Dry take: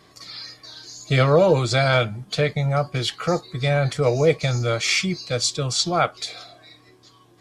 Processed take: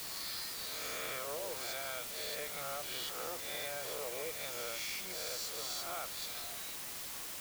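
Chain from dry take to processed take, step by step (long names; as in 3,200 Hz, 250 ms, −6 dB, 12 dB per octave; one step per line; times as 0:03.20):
peak hold with a rise ahead of every peak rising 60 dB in 1.11 s
high-pass filter 480 Hz 12 dB per octave
downward compressor 10 to 1, threshold −32 dBFS, peak gain reduction 19.5 dB
bit-depth reduction 6 bits, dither triangular
level −8 dB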